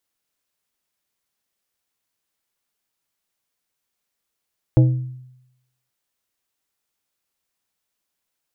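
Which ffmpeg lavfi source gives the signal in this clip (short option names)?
-f lavfi -i "aevalsrc='0.422*pow(10,-3*t/0.86)*sin(2*PI*127*t)+0.188*pow(10,-3*t/0.453)*sin(2*PI*317.5*t)+0.0841*pow(10,-3*t/0.326)*sin(2*PI*508*t)+0.0376*pow(10,-3*t/0.279)*sin(2*PI*635*t)+0.0168*pow(10,-3*t/0.232)*sin(2*PI*825.5*t)':d=1.13:s=44100"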